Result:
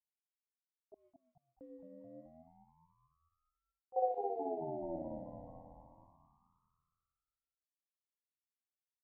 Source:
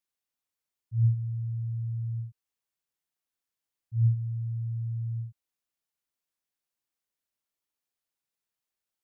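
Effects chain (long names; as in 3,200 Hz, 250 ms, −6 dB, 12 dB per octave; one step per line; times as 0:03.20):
adaptive Wiener filter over 41 samples
0:03.96–0:04.96: bass and treble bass +13 dB, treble +3 dB
spring reverb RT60 2.4 s, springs 30 ms, chirp 50 ms, DRR −7 dB
flanger 1.8 Hz, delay 7.3 ms, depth 6.4 ms, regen +80%
0:00.94–0:01.61: formant filter e
noise gate −59 dBFS, range −22 dB
low-shelf EQ 170 Hz −11.5 dB
echo with shifted repeats 215 ms, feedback 55%, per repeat +83 Hz, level −7 dB
ring modulator whose carrier an LFO sweeps 520 Hz, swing 25%, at 0.27 Hz
level −1.5 dB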